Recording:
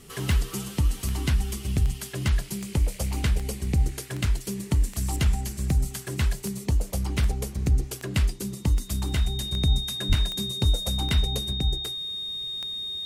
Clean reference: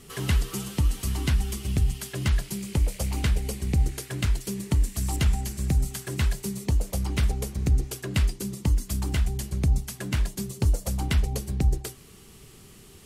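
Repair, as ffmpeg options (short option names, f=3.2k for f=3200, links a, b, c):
-filter_complex "[0:a]adeclick=t=4,bandreject=f=3.7k:w=30,asplit=3[a][b][c];[a]afade=t=out:st=10.08:d=0.02[d];[b]highpass=f=140:w=0.5412,highpass=f=140:w=1.3066,afade=t=in:st=10.08:d=0.02,afade=t=out:st=10.2:d=0.02[e];[c]afade=t=in:st=10.2:d=0.02[f];[d][e][f]amix=inputs=3:normalize=0,asetnsamples=n=441:p=0,asendcmd='11.53 volume volume 3.5dB',volume=0dB"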